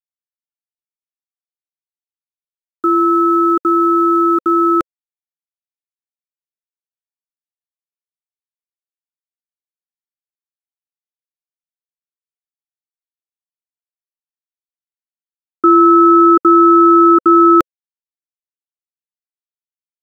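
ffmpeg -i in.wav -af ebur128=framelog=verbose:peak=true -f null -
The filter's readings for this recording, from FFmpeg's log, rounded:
Integrated loudness:
  I:         -10.2 LUFS
  Threshold: -20.4 LUFS
Loudness range:
  LRA:        10.8 LU
  Threshold: -33.4 LUFS
  LRA low:   -20.5 LUFS
  LRA high:   -9.7 LUFS
True peak:
  Peak:       -1.6 dBFS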